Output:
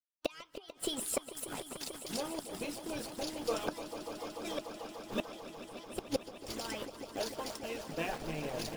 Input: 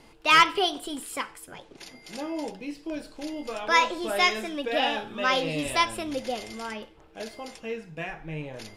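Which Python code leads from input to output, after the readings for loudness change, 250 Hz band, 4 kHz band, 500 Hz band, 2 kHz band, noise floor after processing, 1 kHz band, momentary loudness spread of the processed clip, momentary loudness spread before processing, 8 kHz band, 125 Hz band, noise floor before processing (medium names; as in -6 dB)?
-13.5 dB, -7.5 dB, -13.5 dB, -7.5 dB, -19.0 dB, -57 dBFS, -17.5 dB, 8 LU, 18 LU, -2.5 dB, -6.5 dB, -54 dBFS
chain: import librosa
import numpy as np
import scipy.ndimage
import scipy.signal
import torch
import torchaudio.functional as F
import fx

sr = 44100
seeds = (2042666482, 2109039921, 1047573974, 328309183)

y = fx.peak_eq(x, sr, hz=2000.0, db=-9.0, octaves=0.97)
y = np.where(np.abs(y) >= 10.0 ** (-44.0 / 20.0), y, 0.0)
y = fx.gate_flip(y, sr, shuts_db=-23.0, range_db=-29)
y = fx.echo_swell(y, sr, ms=147, loudest=5, wet_db=-13.5)
y = fx.hpss(y, sr, part='harmonic', gain_db=-16)
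y = y * 10.0 ** (5.5 / 20.0)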